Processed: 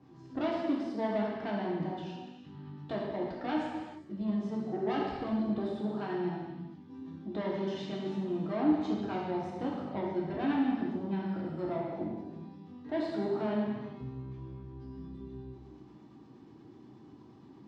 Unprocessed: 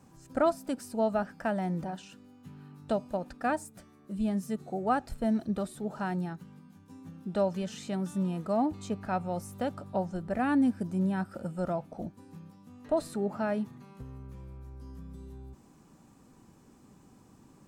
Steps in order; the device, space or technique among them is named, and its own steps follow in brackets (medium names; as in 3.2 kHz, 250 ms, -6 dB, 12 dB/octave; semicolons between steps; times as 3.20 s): guitar amplifier with harmonic tremolo (harmonic tremolo 8.4 Hz, depth 50%, crossover 740 Hz; saturation -31.5 dBFS, distortion -9 dB; cabinet simulation 93–4200 Hz, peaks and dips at 200 Hz -3 dB, 340 Hz +9 dB, 550 Hz -6 dB, 1.4 kHz -7 dB, 2.5 kHz -5 dB); gated-style reverb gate 470 ms falling, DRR -4 dB